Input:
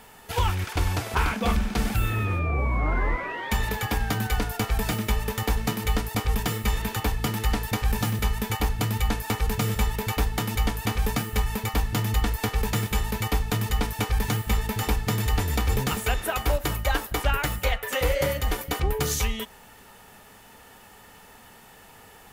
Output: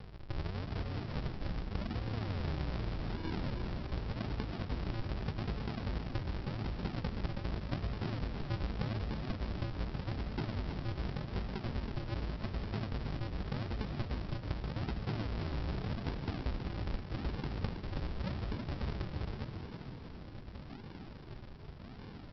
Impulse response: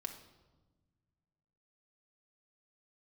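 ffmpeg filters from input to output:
-filter_complex "[0:a]highpass=f=46:p=1,acompressor=threshold=-36dB:ratio=16,aresample=11025,acrusher=samples=33:mix=1:aa=0.000001:lfo=1:lforange=33:lforate=0.85,aresample=44100,asplit=8[a][b][c][d][e][f][g][h];[b]adelay=322,afreqshift=37,volume=-7dB[i];[c]adelay=644,afreqshift=74,volume=-12.2dB[j];[d]adelay=966,afreqshift=111,volume=-17.4dB[k];[e]adelay=1288,afreqshift=148,volume=-22.6dB[l];[f]adelay=1610,afreqshift=185,volume=-27.8dB[m];[g]adelay=1932,afreqshift=222,volume=-33dB[n];[h]adelay=2254,afreqshift=259,volume=-38.2dB[o];[a][i][j][k][l][m][n][o]amix=inputs=8:normalize=0,volume=2dB"

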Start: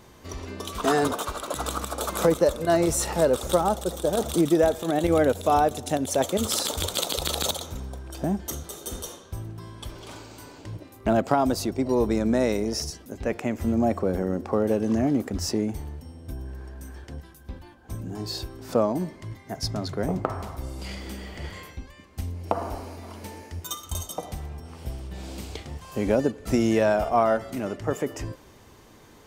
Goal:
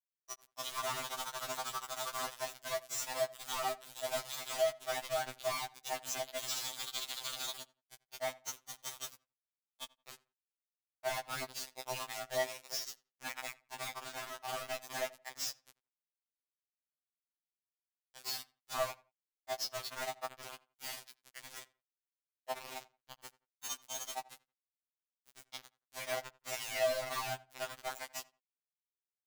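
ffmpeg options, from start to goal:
-filter_complex "[0:a]afftfilt=real='re*between(b*sr/4096,620,7900)':imag='im*between(b*sr/4096,620,7900)':win_size=4096:overlap=0.75,agate=range=-33dB:threshold=-43dB:ratio=3:detection=peak,acompressor=threshold=-36dB:ratio=6,acrusher=bits=5:mix=0:aa=0.000001,asplit=2[a][b];[b]adelay=86,lowpass=f=2.4k:p=1,volume=-20.5dB,asplit=2[c][d];[d]adelay=86,lowpass=f=2.4k:p=1,volume=0.24[e];[a][c][e]amix=inputs=3:normalize=0,afftfilt=real='re*2.45*eq(mod(b,6),0)':imag='im*2.45*eq(mod(b,6),0)':win_size=2048:overlap=0.75,volume=1.5dB"

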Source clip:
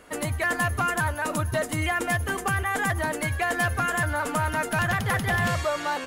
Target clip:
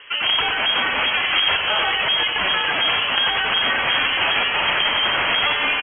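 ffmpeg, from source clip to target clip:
-filter_complex "[0:a]aeval=exprs='(mod(12.6*val(0)+1,2)-1)/12.6':c=same,asplit=2[a][b];[b]adelay=140,highpass=300,lowpass=3.4k,asoftclip=type=hard:threshold=-31.5dB,volume=-6dB[c];[a][c]amix=inputs=2:normalize=0,lowpass=f=2.7k:t=q:w=0.5098,lowpass=f=2.7k:t=q:w=0.6013,lowpass=f=2.7k:t=q:w=0.9,lowpass=f=2.7k:t=q:w=2.563,afreqshift=-3200,asetrate=45938,aresample=44100,asplit=2[d][e];[e]aecho=0:1:93:0.531[f];[d][f]amix=inputs=2:normalize=0,volume=9dB"

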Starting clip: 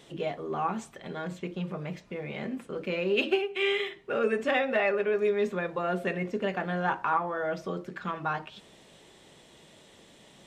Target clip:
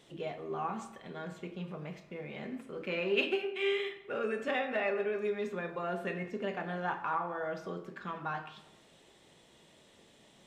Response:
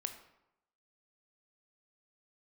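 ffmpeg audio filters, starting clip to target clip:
-filter_complex "[0:a]asettb=1/sr,asplit=3[a][b][c];[a]atrim=end=2.804[d];[b]atrim=start=2.8:end=3.26,asetpts=PTS-STARTPTS,afade=t=in:d=0.004:c=qsin,afade=t=out:st=0.456:d=0.004:c=qsin,equalizer=f=1.5k:w=0.56:g=6.5[e];[c]atrim=start=3.256[f];[d][e]acrossfade=d=0.004:c1=hsin:c2=qsin[g];[g][f]acrossfade=d=0.004:c1=qsin:c2=hsin[h];[1:a]atrim=start_sample=2205[i];[h][i]afir=irnorm=-1:irlink=0,volume=-5dB"

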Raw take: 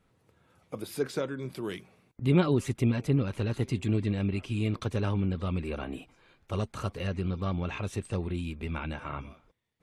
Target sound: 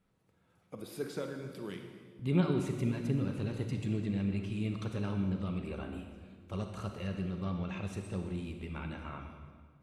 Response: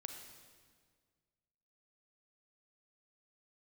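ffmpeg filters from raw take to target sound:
-filter_complex "[0:a]equalizer=f=190:w=4.8:g=7[a];[1:a]atrim=start_sample=2205[b];[a][b]afir=irnorm=-1:irlink=0,volume=-3.5dB"

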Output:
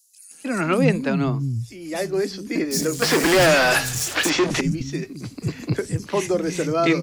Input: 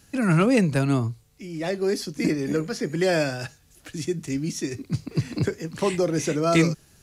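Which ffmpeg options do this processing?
-filter_complex "[0:a]asettb=1/sr,asplit=3[a][b][c];[a]atrim=end=2.714[d];[b]atrim=start=2.71:end=4.3,asetpts=PTS-STARTPTS,afade=t=in:d=0.004:c=qsin,afade=t=out:st=1.586:d=0.004:c=qsin,asplit=2[e][f];[f]highpass=f=720:p=1,volume=37dB,asoftclip=type=tanh:threshold=-11.5dB[g];[e][g]amix=inputs=2:normalize=0,lowpass=f=6.9k:p=1,volume=-6dB[h];[c]atrim=start=4.296[i];[d][h]acrossfade=d=0.004:c1=hsin:c2=qsin[j];[j][i]acrossfade=d=0.004:c1=qsin:c2=hsin,acrossover=split=210|5500[k][l][m];[l]adelay=310[n];[k]adelay=520[o];[o][n][m]amix=inputs=3:normalize=0,volume=2dB"

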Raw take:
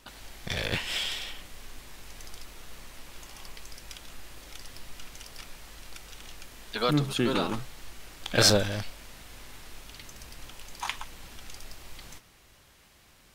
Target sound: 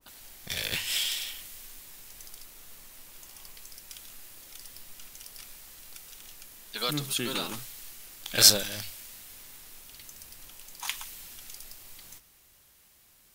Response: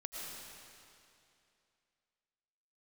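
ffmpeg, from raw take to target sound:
-af "aemphasis=mode=production:type=50fm,bandreject=f=50:t=h:w=6,bandreject=f=100:t=h:w=6,adynamicequalizer=threshold=0.00562:dfrequency=1600:dqfactor=0.7:tfrequency=1600:tqfactor=0.7:attack=5:release=100:ratio=0.375:range=3.5:mode=boostabove:tftype=highshelf,volume=-8dB"

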